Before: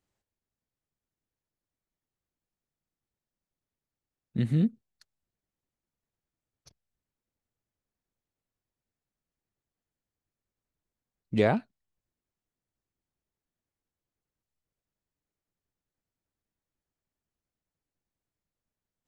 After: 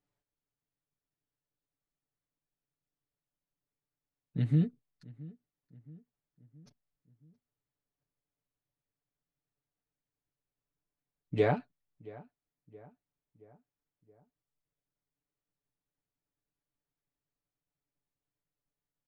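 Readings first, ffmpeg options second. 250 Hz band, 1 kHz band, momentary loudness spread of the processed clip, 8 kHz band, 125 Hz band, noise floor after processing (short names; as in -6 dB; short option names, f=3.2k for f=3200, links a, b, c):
-5.0 dB, -3.0 dB, 21 LU, n/a, -1.0 dB, under -85 dBFS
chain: -filter_complex "[0:a]lowpass=f=2.9k:p=1,aecho=1:1:6.9:0.8,asplit=2[a][b];[b]adelay=673,lowpass=f=1.8k:p=1,volume=-20dB,asplit=2[c][d];[d]adelay=673,lowpass=f=1.8k:p=1,volume=0.53,asplit=2[e][f];[f]adelay=673,lowpass=f=1.8k:p=1,volume=0.53,asplit=2[g][h];[h]adelay=673,lowpass=f=1.8k:p=1,volume=0.53[i];[a][c][e][g][i]amix=inputs=5:normalize=0,volume=-5dB"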